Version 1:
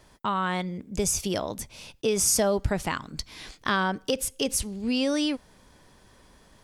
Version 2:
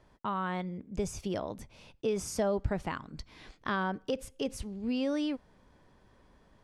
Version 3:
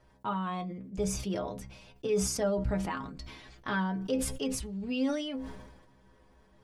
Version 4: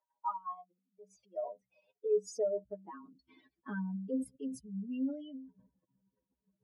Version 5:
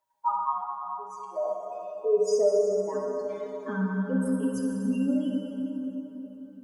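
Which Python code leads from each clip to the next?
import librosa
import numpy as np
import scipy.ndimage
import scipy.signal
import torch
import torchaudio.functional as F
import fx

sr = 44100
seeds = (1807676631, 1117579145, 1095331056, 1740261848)

y1 = fx.lowpass(x, sr, hz=1600.0, slope=6)
y1 = y1 * librosa.db_to_amplitude(-5.0)
y2 = fx.stiff_resonator(y1, sr, f0_hz=62.0, decay_s=0.3, stiffness=0.008)
y2 = fx.sustainer(y2, sr, db_per_s=51.0)
y2 = y2 * librosa.db_to_amplitude(7.0)
y3 = fx.spec_expand(y2, sr, power=2.4)
y3 = fx.filter_sweep_highpass(y3, sr, from_hz=910.0, to_hz=170.0, start_s=0.67, end_s=4.56, q=3.1)
y3 = fx.upward_expand(y3, sr, threshold_db=-38.0, expansion=1.5)
y3 = y3 * librosa.db_to_amplitude(-6.0)
y4 = fx.rev_plate(y3, sr, seeds[0], rt60_s=4.1, hf_ratio=0.6, predelay_ms=0, drr_db=-2.5)
y4 = y4 * librosa.db_to_amplitude(7.0)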